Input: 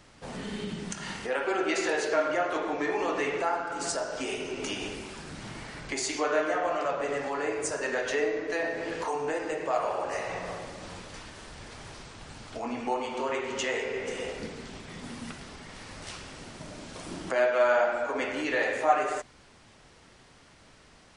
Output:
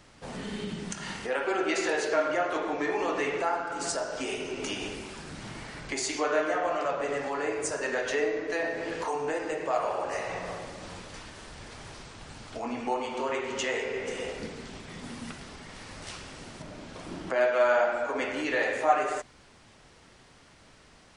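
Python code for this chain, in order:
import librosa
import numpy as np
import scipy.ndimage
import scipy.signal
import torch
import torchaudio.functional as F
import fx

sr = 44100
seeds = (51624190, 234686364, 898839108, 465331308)

y = fx.high_shelf(x, sr, hz=5700.0, db=-10.5, at=(16.62, 17.41))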